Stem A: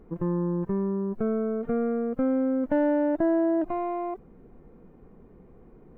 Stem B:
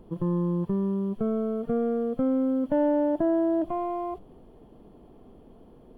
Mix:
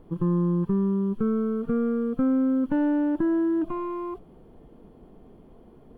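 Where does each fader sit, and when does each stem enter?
-2.5, -1.5 dB; 0.00, 0.00 s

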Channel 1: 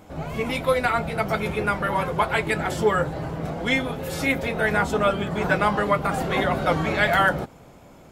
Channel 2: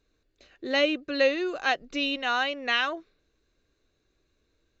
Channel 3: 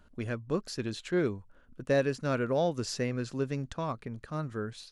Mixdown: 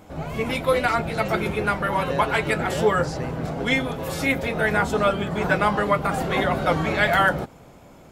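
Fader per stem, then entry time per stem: +0.5, -13.0, -3.0 dB; 0.00, 0.00, 0.20 s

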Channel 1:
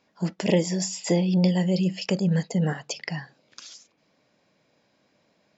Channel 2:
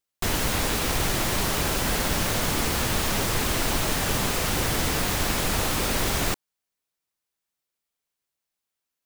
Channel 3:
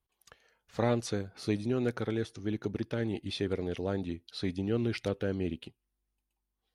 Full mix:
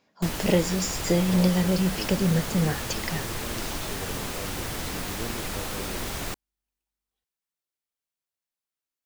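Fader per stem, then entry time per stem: -0.5, -7.5, -7.5 dB; 0.00, 0.00, 0.50 s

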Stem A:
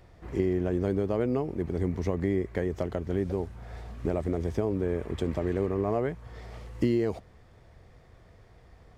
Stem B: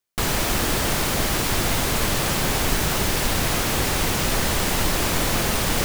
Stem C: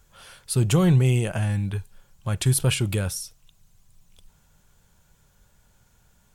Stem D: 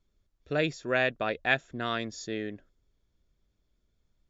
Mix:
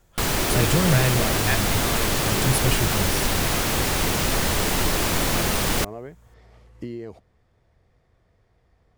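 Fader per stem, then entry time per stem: -8.5, -0.5, -3.0, -1.0 dB; 0.00, 0.00, 0.00, 0.00 s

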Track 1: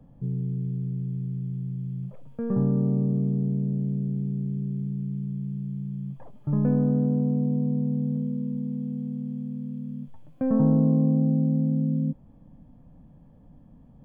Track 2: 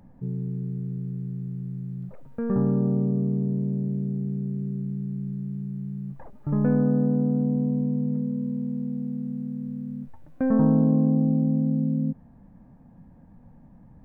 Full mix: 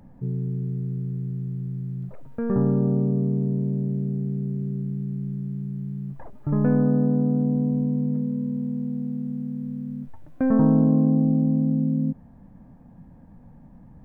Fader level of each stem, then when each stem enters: -9.5, +2.5 dB; 0.00, 0.00 s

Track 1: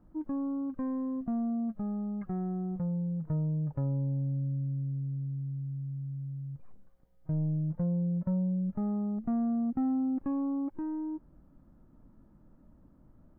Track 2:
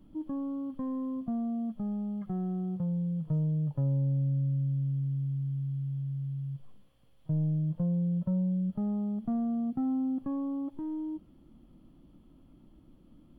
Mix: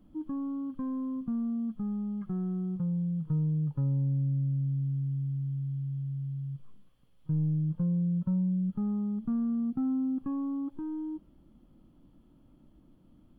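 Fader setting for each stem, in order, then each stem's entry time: -6.5, -3.5 dB; 0.00, 0.00 s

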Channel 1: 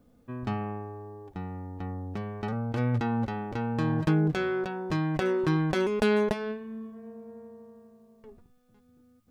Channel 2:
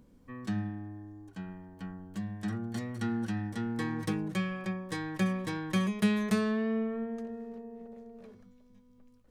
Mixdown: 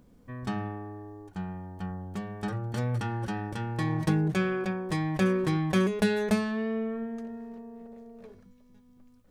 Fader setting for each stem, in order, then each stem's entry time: -3.5, +1.5 dB; 0.00, 0.00 s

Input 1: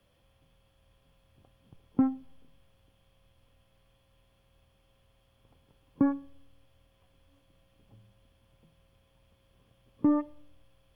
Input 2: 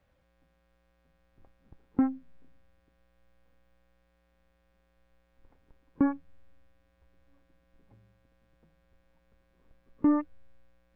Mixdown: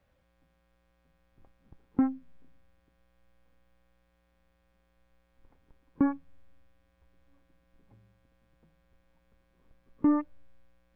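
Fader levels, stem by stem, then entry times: -20.0, -0.5 dB; 0.00, 0.00 s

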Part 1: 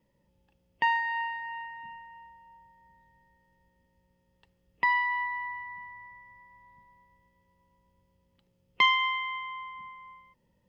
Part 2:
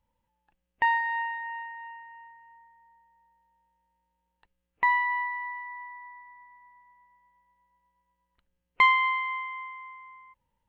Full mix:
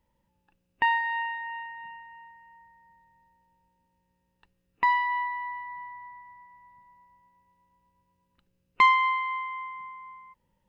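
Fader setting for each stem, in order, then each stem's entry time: -5.5, +1.5 dB; 0.00, 0.00 s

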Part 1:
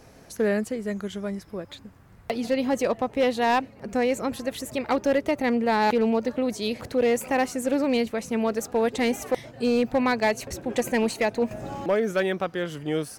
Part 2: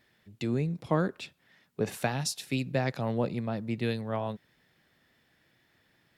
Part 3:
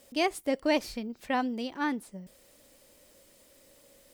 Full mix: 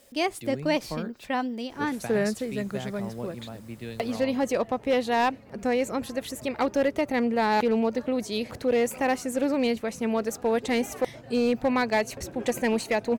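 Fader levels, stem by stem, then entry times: -1.5, -7.5, +1.0 dB; 1.70, 0.00, 0.00 s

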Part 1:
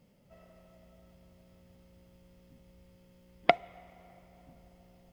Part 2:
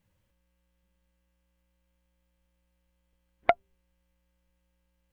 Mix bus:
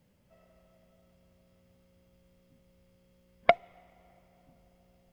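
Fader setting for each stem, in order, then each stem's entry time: -5.0, +0.5 dB; 0.00, 0.00 s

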